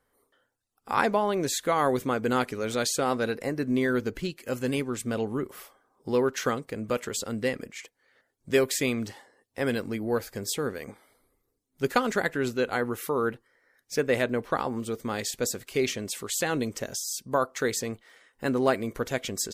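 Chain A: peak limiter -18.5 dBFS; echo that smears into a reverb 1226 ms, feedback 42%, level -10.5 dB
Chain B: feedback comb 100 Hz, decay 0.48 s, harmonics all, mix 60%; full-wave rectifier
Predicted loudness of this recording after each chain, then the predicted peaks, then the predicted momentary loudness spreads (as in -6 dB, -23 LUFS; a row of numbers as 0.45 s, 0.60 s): -30.5 LUFS, -38.5 LUFS; -16.5 dBFS, -13.0 dBFS; 11 LU, 9 LU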